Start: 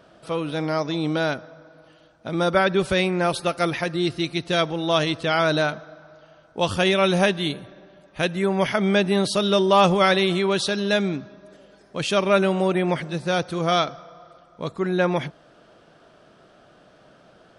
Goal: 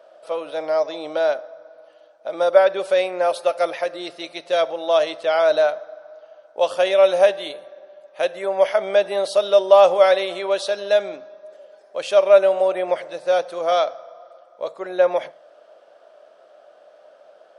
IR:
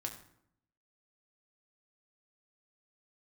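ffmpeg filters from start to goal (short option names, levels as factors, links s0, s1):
-filter_complex "[0:a]highpass=f=580:t=q:w=4.9,asplit=2[s0][s1];[1:a]atrim=start_sample=2205,atrim=end_sample=6615[s2];[s1][s2]afir=irnorm=-1:irlink=0,volume=0.335[s3];[s0][s3]amix=inputs=2:normalize=0,volume=0.473"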